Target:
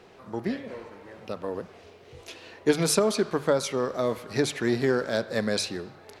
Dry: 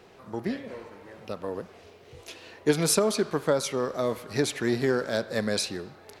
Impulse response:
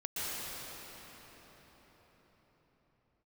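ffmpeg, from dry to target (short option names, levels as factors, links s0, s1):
-af "highshelf=f=10000:g=-7,bandreject=f=50:t=h:w=6,bandreject=f=100:t=h:w=6,bandreject=f=150:t=h:w=6,volume=1.12"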